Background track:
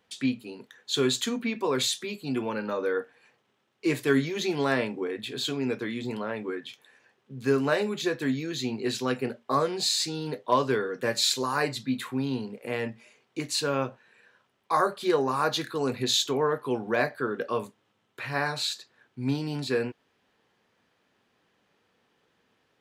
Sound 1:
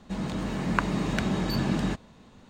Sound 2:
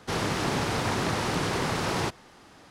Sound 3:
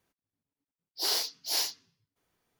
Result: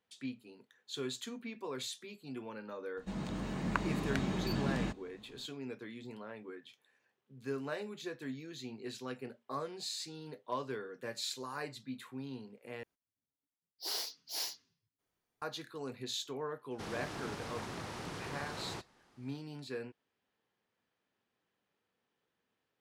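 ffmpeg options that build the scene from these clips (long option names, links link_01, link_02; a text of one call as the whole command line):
ffmpeg -i bed.wav -i cue0.wav -i cue1.wav -i cue2.wav -filter_complex "[0:a]volume=-14.5dB,asplit=2[link_01][link_02];[link_01]atrim=end=12.834[link_03];[3:a]atrim=end=2.59,asetpts=PTS-STARTPTS,volume=-9dB[link_04];[link_02]atrim=start=15.416[link_05];[1:a]atrim=end=2.49,asetpts=PTS-STARTPTS,volume=-8dB,afade=type=in:duration=0.004:curve=hsin,afade=type=out:start_time=2.486:duration=0.004:curve=hsin,adelay=2970[link_06];[2:a]atrim=end=2.7,asetpts=PTS-STARTPTS,volume=-15.5dB,afade=type=in:duration=0.004:curve=hsin,afade=type=out:start_time=2.696:duration=0.004:curve=hsin,adelay=16710[link_07];[link_03][link_04]acrossfade=duration=0.004:curve1=hsin:curve2=hsin[link_08];[link_08][link_05]acrossfade=duration=0.004:curve1=hsin:curve2=hsin[link_09];[link_09][link_06][link_07]amix=inputs=3:normalize=0" out.wav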